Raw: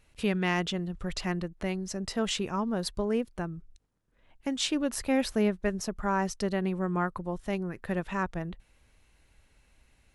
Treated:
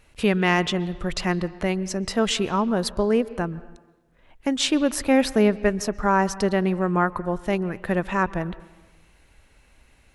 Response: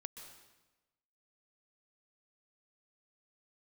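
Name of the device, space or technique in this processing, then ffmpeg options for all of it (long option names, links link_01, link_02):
filtered reverb send: -filter_complex "[0:a]asplit=2[link_01][link_02];[link_02]highpass=210,lowpass=3300[link_03];[1:a]atrim=start_sample=2205[link_04];[link_03][link_04]afir=irnorm=-1:irlink=0,volume=-5dB[link_05];[link_01][link_05]amix=inputs=2:normalize=0,volume=6.5dB"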